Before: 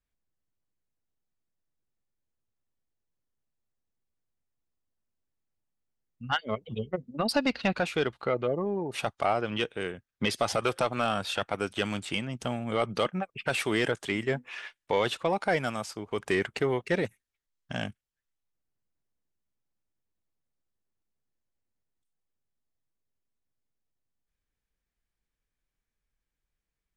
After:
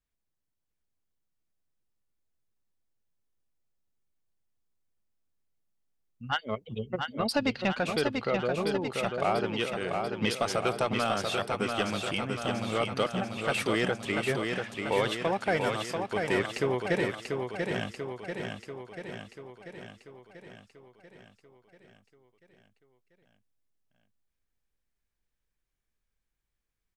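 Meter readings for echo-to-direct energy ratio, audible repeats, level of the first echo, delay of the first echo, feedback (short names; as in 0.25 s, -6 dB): -2.5 dB, 7, -4.5 dB, 0.689 s, 60%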